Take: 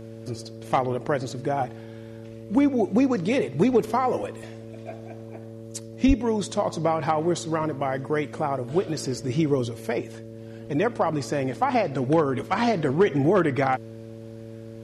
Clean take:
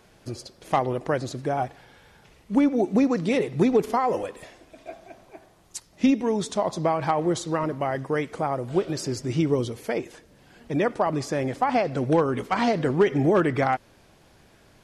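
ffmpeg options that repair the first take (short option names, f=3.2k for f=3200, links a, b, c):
-filter_complex "[0:a]bandreject=f=112.5:t=h:w=4,bandreject=f=225:t=h:w=4,bandreject=f=337.5:t=h:w=4,bandreject=f=450:t=h:w=4,bandreject=f=562.5:t=h:w=4,asplit=3[a][b][c];[a]afade=t=out:st=6.07:d=0.02[d];[b]highpass=f=140:w=0.5412,highpass=f=140:w=1.3066,afade=t=in:st=6.07:d=0.02,afade=t=out:st=6.19:d=0.02[e];[c]afade=t=in:st=6.19:d=0.02[f];[d][e][f]amix=inputs=3:normalize=0"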